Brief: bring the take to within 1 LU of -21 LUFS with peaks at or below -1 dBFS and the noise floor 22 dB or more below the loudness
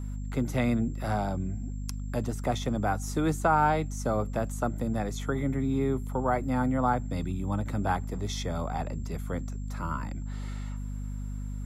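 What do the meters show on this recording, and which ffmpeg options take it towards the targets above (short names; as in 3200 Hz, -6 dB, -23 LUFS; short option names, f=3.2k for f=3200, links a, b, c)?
hum 50 Hz; harmonics up to 250 Hz; hum level -32 dBFS; steady tone 7400 Hz; tone level -59 dBFS; loudness -30.5 LUFS; peak -13.5 dBFS; loudness target -21.0 LUFS
-> -af "bandreject=f=50:t=h:w=4,bandreject=f=100:t=h:w=4,bandreject=f=150:t=h:w=4,bandreject=f=200:t=h:w=4,bandreject=f=250:t=h:w=4"
-af "bandreject=f=7.4k:w=30"
-af "volume=9.5dB"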